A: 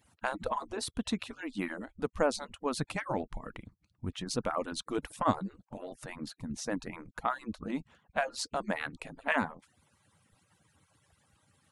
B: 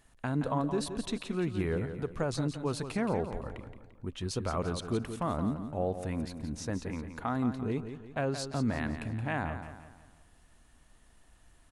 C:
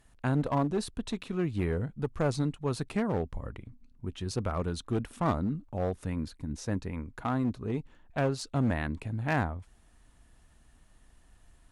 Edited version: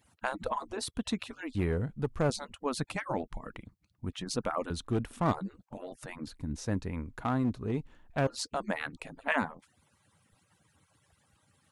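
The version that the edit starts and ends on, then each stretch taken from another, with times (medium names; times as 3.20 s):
A
1.55–2.30 s: from C
4.70–5.32 s: from C
6.27–8.27 s: from C
not used: B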